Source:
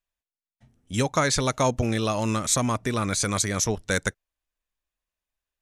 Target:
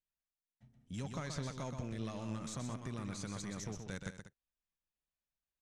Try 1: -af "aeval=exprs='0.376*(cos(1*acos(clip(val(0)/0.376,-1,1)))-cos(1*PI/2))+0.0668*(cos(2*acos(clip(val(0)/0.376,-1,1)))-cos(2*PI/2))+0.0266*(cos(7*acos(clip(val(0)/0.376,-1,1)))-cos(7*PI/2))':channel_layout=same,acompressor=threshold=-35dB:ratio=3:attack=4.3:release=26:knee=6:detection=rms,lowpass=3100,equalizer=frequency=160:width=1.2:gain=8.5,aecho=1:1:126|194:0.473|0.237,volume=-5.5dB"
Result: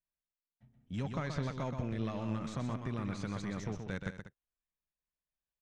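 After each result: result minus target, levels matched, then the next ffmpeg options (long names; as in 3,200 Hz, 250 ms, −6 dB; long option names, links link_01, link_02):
8,000 Hz band −12.0 dB; downward compressor: peak gain reduction −5 dB
-af "aeval=exprs='0.376*(cos(1*acos(clip(val(0)/0.376,-1,1)))-cos(1*PI/2))+0.0668*(cos(2*acos(clip(val(0)/0.376,-1,1)))-cos(2*PI/2))+0.0266*(cos(7*acos(clip(val(0)/0.376,-1,1)))-cos(7*PI/2))':channel_layout=same,acompressor=threshold=-35dB:ratio=3:attack=4.3:release=26:knee=6:detection=rms,lowpass=7800,equalizer=frequency=160:width=1.2:gain=8.5,aecho=1:1:126|194:0.473|0.237,volume=-5.5dB"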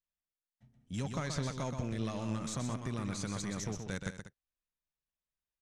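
downward compressor: peak gain reduction −5 dB
-af "aeval=exprs='0.376*(cos(1*acos(clip(val(0)/0.376,-1,1)))-cos(1*PI/2))+0.0668*(cos(2*acos(clip(val(0)/0.376,-1,1)))-cos(2*PI/2))+0.0266*(cos(7*acos(clip(val(0)/0.376,-1,1)))-cos(7*PI/2))':channel_layout=same,acompressor=threshold=-42.5dB:ratio=3:attack=4.3:release=26:knee=6:detection=rms,lowpass=7800,equalizer=frequency=160:width=1.2:gain=8.5,aecho=1:1:126|194:0.473|0.237,volume=-5.5dB"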